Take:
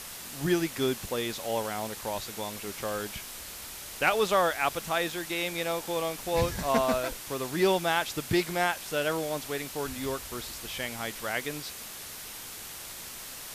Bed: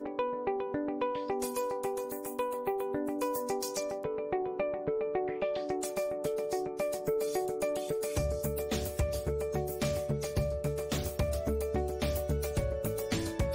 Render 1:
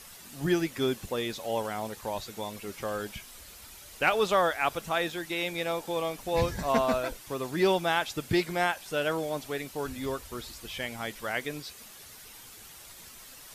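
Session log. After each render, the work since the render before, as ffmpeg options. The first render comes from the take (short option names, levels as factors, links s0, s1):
-af "afftdn=nr=9:nf=-42"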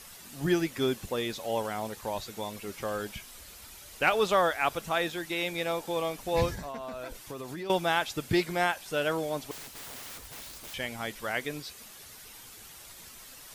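-filter_complex "[0:a]asettb=1/sr,asplit=3[s0][s1][s2];[s0]atrim=end=6.554[s3];[s1]atrim=start=6.55:end=7.7,asetpts=PTS-STARTPTS,afade=t=in:d=0.004:c=qsin,afade=t=out:st=1.146:d=0.004:c=qsin,acompressor=threshold=0.0178:ratio=8:attack=3.2:release=140:knee=1:detection=peak[s4];[s2]atrim=start=7.696[s5];[s3][s4]acrossfade=d=0.004:c1=hsin:c2=qsin[s6];[s6][s5]acrossfade=d=0.004:c1=qsin:c2=hsin,asettb=1/sr,asplit=3[s7][s8][s9];[s7]atrim=end=9.514[s10];[s8]atrim=start=9.51:end=10.74,asetpts=PTS-STARTPTS,afade=t=in:d=0.004:c=qsin,afade=t=out:st=1.226:d=0.004:c=qsin,aeval=exprs='(mod(84.1*val(0)+1,2)-1)/84.1':c=same[s11];[s9]atrim=start=10.736[s12];[s10][s11]acrossfade=d=0.004:c1=hsin:c2=qsin[s13];[s13][s12]acrossfade=d=0.004:c1=qsin:c2=hsin"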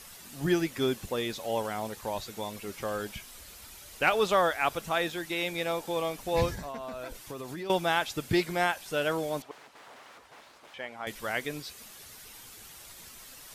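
-filter_complex "[0:a]asettb=1/sr,asplit=3[s0][s1][s2];[s0]atrim=end=9.424[s3];[s1]atrim=start=9.42:end=11.07,asetpts=PTS-STARTPTS,afade=t=in:d=0.004:c=qsin,afade=t=out:st=1.646:d=0.004:c=qsin,bandpass=f=890:t=q:w=0.78[s4];[s2]atrim=start=11.066[s5];[s3][s4]acrossfade=d=0.004:c1=hsin:c2=qsin[s6];[s6][s5]acrossfade=d=0.004:c1=qsin:c2=hsin"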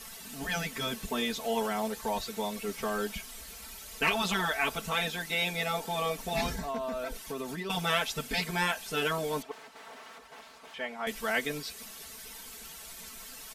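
-af "afftfilt=real='re*lt(hypot(re,im),0.2)':imag='im*lt(hypot(re,im),0.2)':win_size=1024:overlap=0.75,aecho=1:1:4.5:0.95"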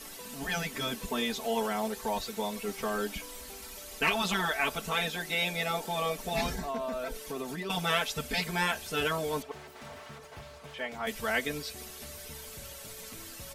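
-filter_complex "[1:a]volume=0.126[s0];[0:a][s0]amix=inputs=2:normalize=0"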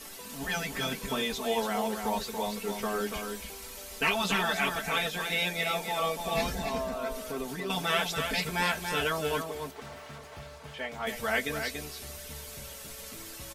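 -filter_complex "[0:a]asplit=2[s0][s1];[s1]adelay=15,volume=0.282[s2];[s0][s2]amix=inputs=2:normalize=0,aecho=1:1:285:0.501"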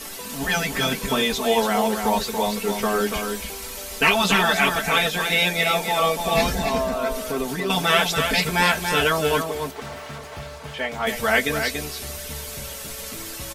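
-af "volume=2.99"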